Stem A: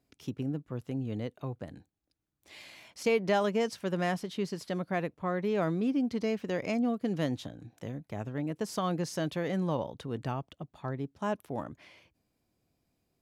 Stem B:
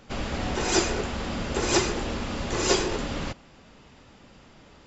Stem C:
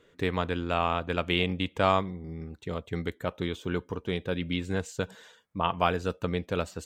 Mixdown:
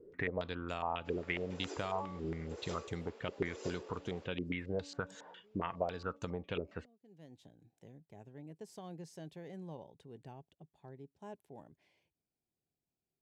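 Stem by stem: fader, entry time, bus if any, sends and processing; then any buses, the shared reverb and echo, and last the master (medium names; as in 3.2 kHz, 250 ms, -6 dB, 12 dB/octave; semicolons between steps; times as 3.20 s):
-18.5 dB, 0.00 s, no send, graphic EQ with 31 bands 160 Hz +5 dB, 400 Hz +7 dB, 800 Hz +5 dB, 1.25 kHz -12 dB, 8 kHz +5 dB; auto duck -23 dB, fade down 0.40 s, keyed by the third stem
-16.5 dB, 0.95 s, no send, ladder high-pass 400 Hz, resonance 65%
-1.0 dB, 0.00 s, no send, de-hum 285.1 Hz, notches 4; compression 5:1, threshold -37 dBFS, peak gain reduction 16.5 dB; step-sequenced low-pass 7.3 Hz 390–6600 Hz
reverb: none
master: none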